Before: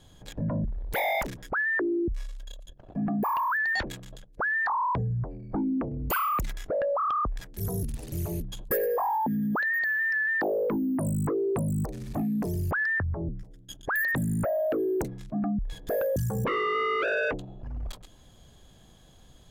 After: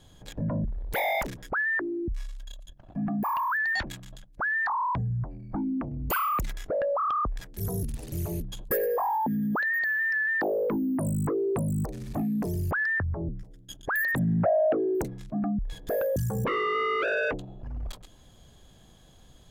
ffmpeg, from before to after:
ffmpeg -i in.wav -filter_complex "[0:a]asettb=1/sr,asplit=3[link_01][link_02][link_03];[link_01]atrim=end=1.784[link_04];[link_02]atrim=start=1.78:end=6.09,asetpts=PTS-STARTPTS,afade=type=in:duration=0.004:curve=qsin,afade=type=out:start_time=4.306:duration=0.004:curve=qsin,equalizer=frequency=450:width_type=o:width=0.59:gain=-12[link_05];[link_03]atrim=start=6.086[link_06];[link_04][link_05]acrossfade=duration=0.004:curve1=hsin:curve2=qsin[link_07];[link_07][link_06]acrossfade=duration=0.004:curve1=qsin:curve2=hsin,asettb=1/sr,asplit=3[link_08][link_09][link_10];[link_08]atrim=end=14.194[link_11];[link_09]atrim=start=14.19:end=14.95,asetpts=PTS-STARTPTS,afade=type=in:duration=0.004:curve=qsin,afade=type=out:start_time=0.756:duration=0.004:curve=qsin,highpass=100,equalizer=frequency=100:width_type=q:width=4:gain=4,equalizer=frequency=180:width_type=q:width=4:gain=6,equalizer=frequency=730:width_type=q:width=4:gain=10,lowpass=frequency=3300:width=0.5412,lowpass=frequency=3300:width=1.3066[link_12];[link_10]atrim=start=14.946[link_13];[link_11][link_12]acrossfade=duration=0.004:curve1=hsin:curve2=qsin[link_14];[link_14][link_13]acrossfade=duration=0.004:curve1=qsin:curve2=hsin" out.wav

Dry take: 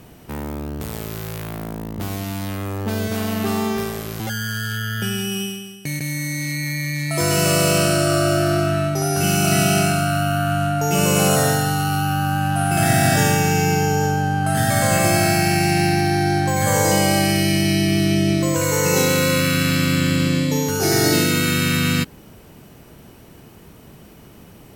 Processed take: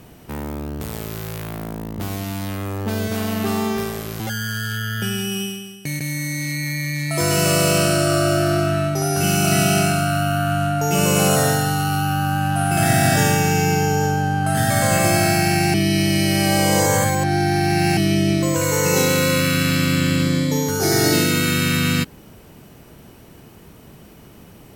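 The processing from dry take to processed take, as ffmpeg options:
ffmpeg -i in.wav -filter_complex "[0:a]asettb=1/sr,asplit=3[link_01][link_02][link_03];[link_01]atrim=end=20.224[link_04];[link_02]atrim=start=20.22:end=20.99,asetpts=PTS-STARTPTS,afade=type=in:duration=0.004:curve=qsin,afade=type=out:start_time=0.766:duration=0.004:curve=qsin,bandreject=frequency=2700:width=5.6[link_05];[link_03]atrim=start=20.986[link_06];[link_04][link_05]acrossfade=duration=0.004:curve1=hsin:curve2=qsin[link_07];[link_07][link_06]acrossfade=duration=0.004:curve1=qsin:curve2=hsin,asplit=3[link_08][link_09][link_10];[link_08]atrim=end=15.742[link_11];[link_09]atrim=start=15.738:end=17.972,asetpts=PTS-STARTPTS,areverse[link_12];[link_10]atrim=start=17.968[link_13];[link_11][link_12]acrossfade=duration=0.004:curve1=hsin:curve2=hsin[link_14];[link_14][link_13]acrossfade=duration=0.004:curve1=hsin:curve2=hsin" out.wav

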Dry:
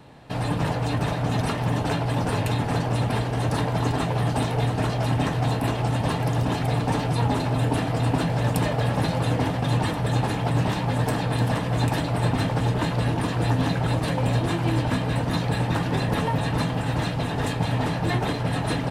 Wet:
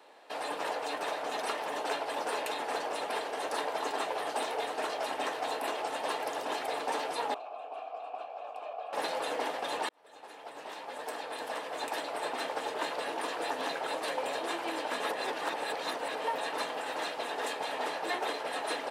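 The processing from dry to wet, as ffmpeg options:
ffmpeg -i in.wav -filter_complex "[0:a]asettb=1/sr,asplit=3[link_01][link_02][link_03];[link_01]atrim=end=7.344[link_04];[link_02]atrim=start=7.34:end=8.93,asetpts=PTS-STARTPTS,afade=type=in:duration=0.004:curve=qsin,afade=type=out:start_time=1.586:duration=0.004:curve=qsin,asplit=3[link_05][link_06][link_07];[link_05]bandpass=frequency=730:width_type=q:width=8,volume=0dB[link_08];[link_06]bandpass=frequency=1090:width_type=q:width=8,volume=-6dB[link_09];[link_07]bandpass=frequency=2440:width_type=q:width=8,volume=-9dB[link_10];[link_08][link_09][link_10]amix=inputs=3:normalize=0[link_11];[link_03]atrim=start=8.926[link_12];[link_04][link_11]acrossfade=duration=0.004:curve1=hsin:curve2=qsin[link_13];[link_13][link_12]acrossfade=duration=0.004:curve1=qsin:curve2=hsin,asplit=4[link_14][link_15][link_16][link_17];[link_14]atrim=end=9.89,asetpts=PTS-STARTPTS,afade=type=out:start_time=9.886:duration=0.004:curve=hsin[link_18];[link_15]atrim=start=9.89:end=15.002,asetpts=PTS-STARTPTS,afade=type=in:duration=3.52:curve=qsin[link_19];[link_16]atrim=start=14.998:end=16.242,asetpts=PTS-STARTPTS,areverse[link_20];[link_17]atrim=start=16.238[link_21];[link_18][link_19]concat=n=2:v=0:a=1[link_22];[link_22][link_20]acrossfade=duration=0.004:curve1=hsin:curve2=hsin[link_23];[link_23][link_21]acrossfade=duration=0.004:curve1=hsin:curve2=hsin,highpass=frequency=410:width=0.5412,highpass=frequency=410:width=1.3066,volume=-4.5dB" out.wav

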